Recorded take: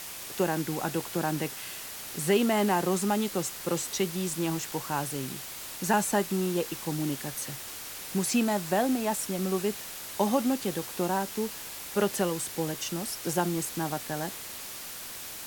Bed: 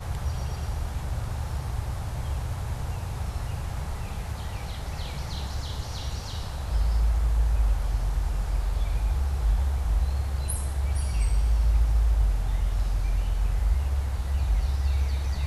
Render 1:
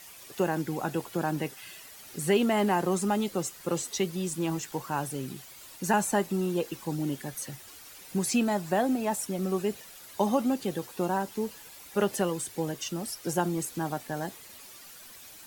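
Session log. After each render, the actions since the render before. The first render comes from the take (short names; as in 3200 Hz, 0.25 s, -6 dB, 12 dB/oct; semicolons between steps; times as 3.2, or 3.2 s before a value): denoiser 11 dB, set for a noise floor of -41 dBFS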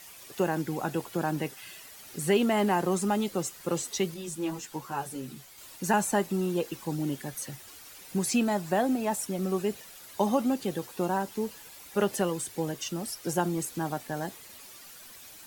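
4.14–5.58 ensemble effect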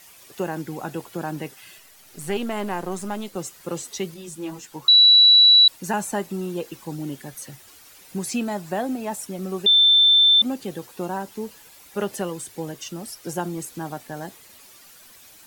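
1.78–3.36 half-wave gain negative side -7 dB; 4.88–5.68 bleep 3930 Hz -9 dBFS; 9.66–10.42 bleep 3550 Hz -11.5 dBFS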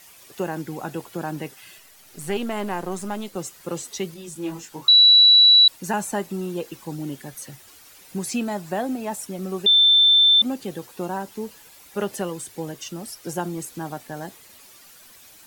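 4.33–5.25 doubler 24 ms -6 dB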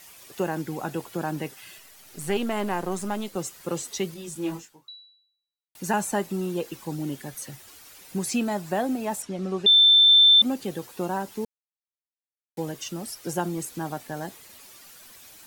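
4.55–5.75 fade out exponential; 9.22–10.09 LPF 5400 Hz; 11.45–12.57 mute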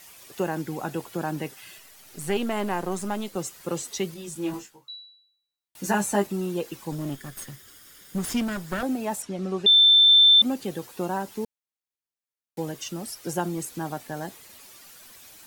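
4.52–6.27 doubler 15 ms -3 dB; 6.92–8.83 minimum comb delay 0.58 ms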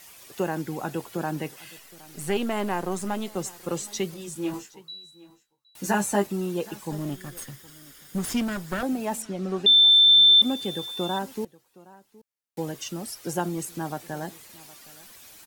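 echo 0.767 s -21.5 dB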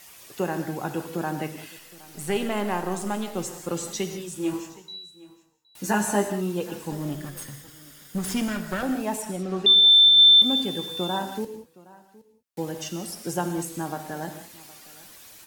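non-linear reverb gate 0.22 s flat, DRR 6.5 dB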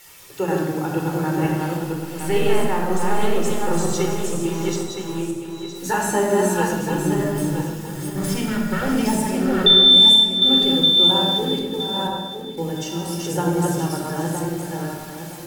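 regenerating reverse delay 0.483 s, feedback 48%, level -1.5 dB; shoebox room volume 3300 m³, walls furnished, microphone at 4.3 m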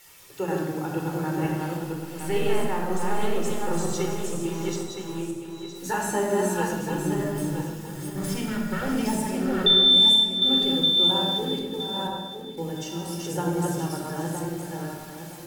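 gain -5.5 dB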